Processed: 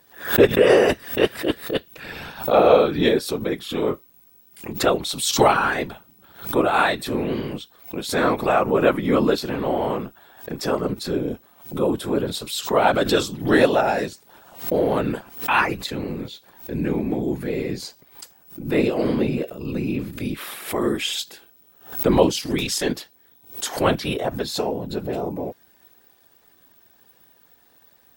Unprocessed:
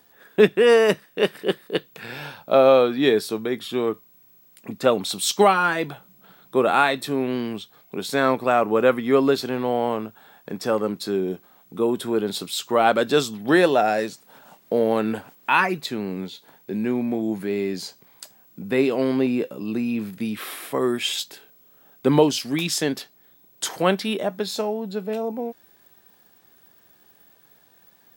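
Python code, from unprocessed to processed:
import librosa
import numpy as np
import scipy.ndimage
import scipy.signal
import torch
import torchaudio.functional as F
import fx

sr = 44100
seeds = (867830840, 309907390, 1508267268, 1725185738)

y = fx.whisperise(x, sr, seeds[0])
y = fx.doubler(y, sr, ms=23.0, db=-6.5, at=(3.84, 4.73))
y = fx.pre_swell(y, sr, db_per_s=140.0)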